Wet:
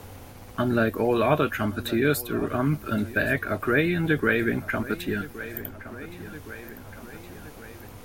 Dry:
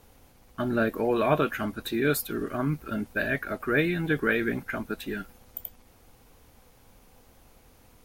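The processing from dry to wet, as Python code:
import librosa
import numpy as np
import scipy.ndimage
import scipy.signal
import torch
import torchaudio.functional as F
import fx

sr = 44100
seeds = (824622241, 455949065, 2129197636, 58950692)

y = fx.peak_eq(x, sr, hz=96.0, db=12.5, octaves=0.33)
y = fx.echo_feedback(y, sr, ms=1117, feedback_pct=46, wet_db=-20)
y = fx.band_squash(y, sr, depth_pct=40)
y = F.gain(torch.from_numpy(y), 3.0).numpy()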